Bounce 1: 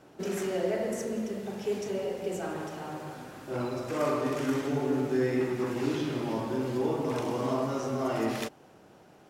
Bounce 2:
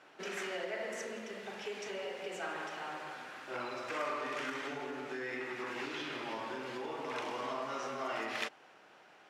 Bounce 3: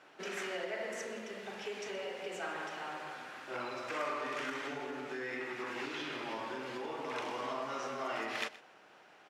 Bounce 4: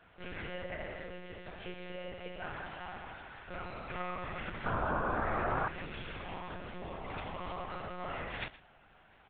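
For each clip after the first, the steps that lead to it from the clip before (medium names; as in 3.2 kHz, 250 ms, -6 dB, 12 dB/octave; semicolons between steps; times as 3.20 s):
compression, threshold -29 dBFS, peak gain reduction 6.5 dB; band-pass filter 2.1 kHz, Q 0.96; trim +5 dB
delay 122 ms -18 dB
painted sound noise, 4.65–5.68 s, 250–1600 Hz -31 dBFS; monotone LPC vocoder at 8 kHz 180 Hz; trim -2 dB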